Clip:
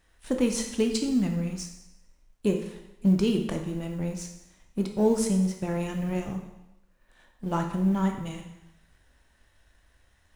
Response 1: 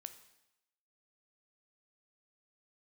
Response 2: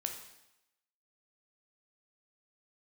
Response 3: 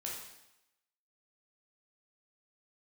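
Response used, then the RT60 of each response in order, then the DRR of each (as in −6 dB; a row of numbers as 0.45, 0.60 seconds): 2; 0.90, 0.90, 0.90 seconds; 9.5, 3.5, −3.5 decibels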